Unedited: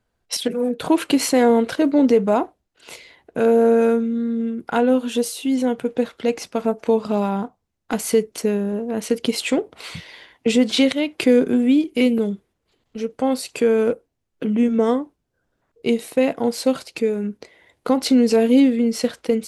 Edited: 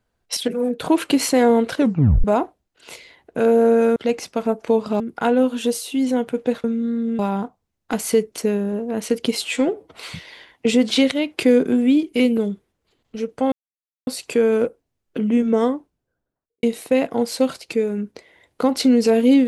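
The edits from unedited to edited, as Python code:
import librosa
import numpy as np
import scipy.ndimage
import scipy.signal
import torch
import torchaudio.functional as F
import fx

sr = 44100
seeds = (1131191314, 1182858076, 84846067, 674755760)

y = fx.studio_fade_out(x, sr, start_s=15.0, length_s=0.89)
y = fx.edit(y, sr, fx.tape_stop(start_s=1.78, length_s=0.46),
    fx.swap(start_s=3.96, length_s=0.55, other_s=6.15, other_length_s=1.04),
    fx.stretch_span(start_s=9.38, length_s=0.38, factor=1.5),
    fx.insert_silence(at_s=13.33, length_s=0.55), tone=tone)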